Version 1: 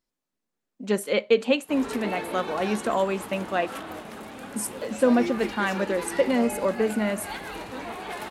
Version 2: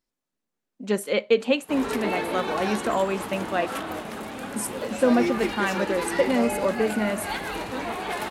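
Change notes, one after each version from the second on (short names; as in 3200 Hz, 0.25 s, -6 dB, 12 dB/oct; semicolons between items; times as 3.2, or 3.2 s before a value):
background +5.0 dB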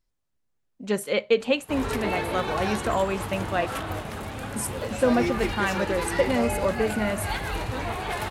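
master: add resonant low shelf 150 Hz +12 dB, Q 1.5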